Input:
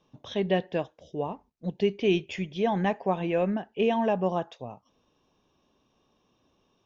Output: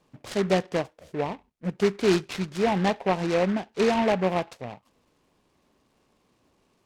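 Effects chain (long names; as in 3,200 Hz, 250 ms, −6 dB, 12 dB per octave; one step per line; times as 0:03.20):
short delay modulated by noise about 1,400 Hz, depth 0.073 ms
level +2.5 dB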